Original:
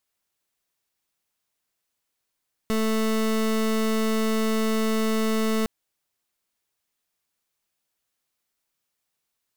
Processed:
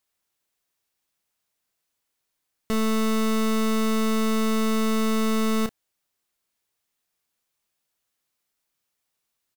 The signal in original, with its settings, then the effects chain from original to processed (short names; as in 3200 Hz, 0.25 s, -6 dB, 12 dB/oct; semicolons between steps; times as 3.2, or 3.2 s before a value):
pulse 220 Hz, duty 27% -23 dBFS 2.96 s
doubler 31 ms -10 dB